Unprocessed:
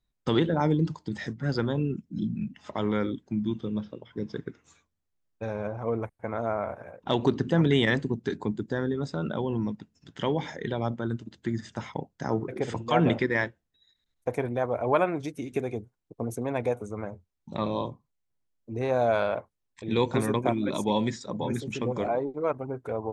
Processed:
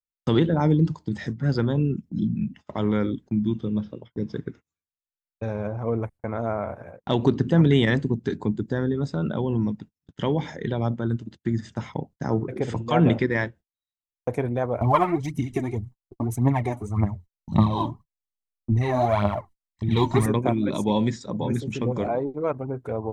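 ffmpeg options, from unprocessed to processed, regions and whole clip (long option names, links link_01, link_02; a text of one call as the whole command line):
ffmpeg -i in.wav -filter_complex "[0:a]asettb=1/sr,asplit=3[link_01][link_02][link_03];[link_01]atrim=end=14.814[link_04];[link_02]atrim=start=14.81:end=20.26,asetpts=PTS-STARTPTS,afade=type=in:duration=0.004:curve=qsin,afade=type=out:start_time=5.446:duration=0.004:curve=qsin,aecho=1:1:1:0.79,atrim=end_sample=240345,aphaser=in_gain=1:out_gain=1:delay=3.6:decay=0.65:speed=1.8:type=triangular[link_05];[link_03]atrim=start=20.256[link_06];[link_04][link_05]acrossfade=duration=0.004:curve1=hsin:curve2=qsin[link_07];[link_07][link_06]acrossfade=duration=0.004:curve1=qsin:curve2=hsin,agate=range=-34dB:threshold=-46dB:ratio=16:detection=peak,lowshelf=frequency=280:gain=8" out.wav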